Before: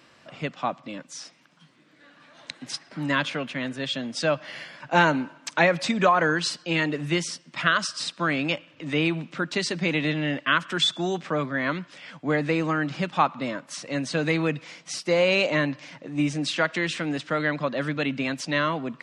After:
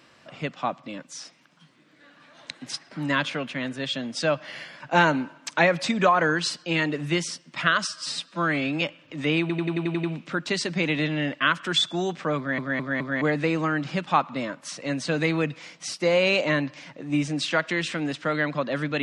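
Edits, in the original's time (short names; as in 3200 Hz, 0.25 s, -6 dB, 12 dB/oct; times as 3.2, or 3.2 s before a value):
7.87–8.5 stretch 1.5×
9.09 stutter 0.09 s, 8 plays
11.43 stutter in place 0.21 s, 4 plays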